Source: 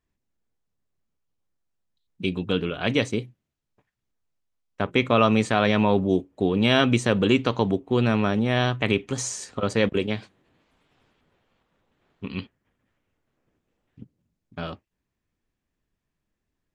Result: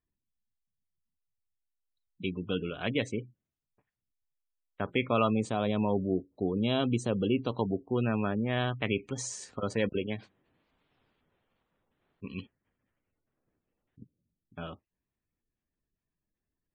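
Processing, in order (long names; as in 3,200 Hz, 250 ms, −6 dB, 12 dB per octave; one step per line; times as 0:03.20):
gate on every frequency bin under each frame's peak −25 dB strong
0:05.30–0:07.59: parametric band 1,800 Hz −13 dB 0.93 octaves
level −7.5 dB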